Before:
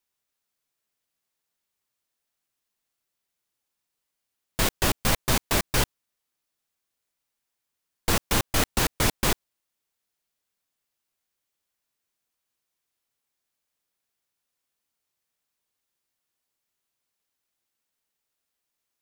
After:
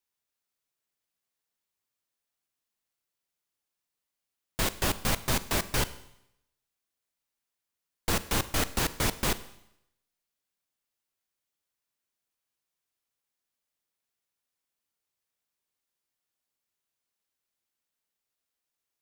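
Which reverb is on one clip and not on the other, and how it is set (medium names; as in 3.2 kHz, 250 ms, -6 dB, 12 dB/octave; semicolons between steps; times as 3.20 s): Schroeder reverb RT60 0.79 s, combs from 33 ms, DRR 14.5 dB; trim -4.5 dB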